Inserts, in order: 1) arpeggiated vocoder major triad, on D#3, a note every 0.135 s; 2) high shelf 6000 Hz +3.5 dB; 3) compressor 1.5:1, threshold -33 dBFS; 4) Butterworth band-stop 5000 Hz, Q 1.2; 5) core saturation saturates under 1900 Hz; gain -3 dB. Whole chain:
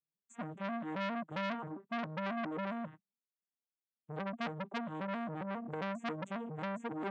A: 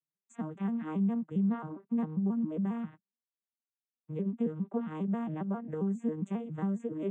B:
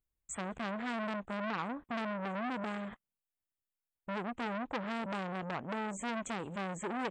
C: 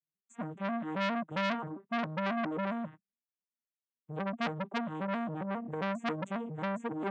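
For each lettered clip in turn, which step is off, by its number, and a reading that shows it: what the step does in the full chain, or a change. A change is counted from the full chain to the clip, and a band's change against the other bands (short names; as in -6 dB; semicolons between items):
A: 5, crest factor change -6.5 dB; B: 1, 125 Hz band -3.0 dB; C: 3, mean gain reduction 3.0 dB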